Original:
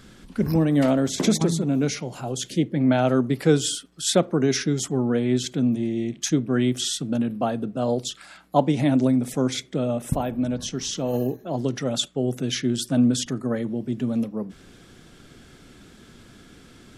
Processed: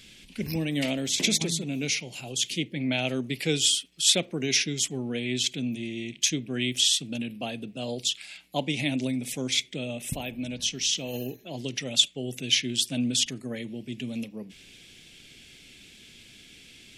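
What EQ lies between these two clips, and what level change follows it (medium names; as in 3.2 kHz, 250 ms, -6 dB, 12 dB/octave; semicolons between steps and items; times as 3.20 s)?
resonant high shelf 1.8 kHz +11 dB, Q 3; -9.0 dB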